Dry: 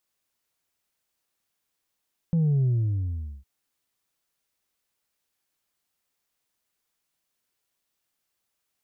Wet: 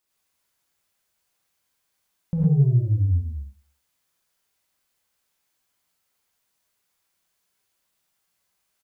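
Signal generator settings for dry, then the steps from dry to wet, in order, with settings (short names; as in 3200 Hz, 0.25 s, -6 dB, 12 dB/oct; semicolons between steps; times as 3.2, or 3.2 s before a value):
sub drop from 170 Hz, over 1.11 s, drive 2 dB, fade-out 0.80 s, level -19.5 dB
feedback echo 0.101 s, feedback 41%, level -23.5 dB; non-linear reverb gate 0.14 s rising, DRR -4 dB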